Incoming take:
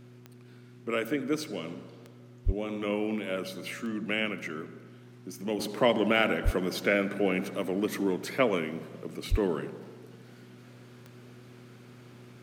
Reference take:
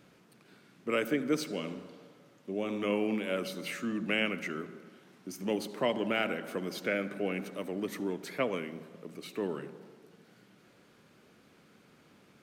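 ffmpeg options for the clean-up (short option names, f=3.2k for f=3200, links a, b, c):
-filter_complex "[0:a]adeclick=t=4,bandreject=f=122.2:t=h:w=4,bandreject=f=244.4:t=h:w=4,bandreject=f=366.6:t=h:w=4,asplit=3[a][b][c];[a]afade=t=out:st=2.45:d=0.02[d];[b]highpass=f=140:w=0.5412,highpass=f=140:w=1.3066,afade=t=in:st=2.45:d=0.02,afade=t=out:st=2.57:d=0.02[e];[c]afade=t=in:st=2.57:d=0.02[f];[d][e][f]amix=inputs=3:normalize=0,asplit=3[g][h][i];[g]afade=t=out:st=6.44:d=0.02[j];[h]highpass=f=140:w=0.5412,highpass=f=140:w=1.3066,afade=t=in:st=6.44:d=0.02,afade=t=out:st=6.56:d=0.02[k];[i]afade=t=in:st=6.56:d=0.02[l];[j][k][l]amix=inputs=3:normalize=0,asplit=3[m][n][o];[m]afade=t=out:st=9.3:d=0.02[p];[n]highpass=f=140:w=0.5412,highpass=f=140:w=1.3066,afade=t=in:st=9.3:d=0.02,afade=t=out:st=9.42:d=0.02[q];[o]afade=t=in:st=9.42:d=0.02[r];[p][q][r]amix=inputs=3:normalize=0,asetnsamples=n=441:p=0,asendcmd='5.59 volume volume -6dB',volume=0dB"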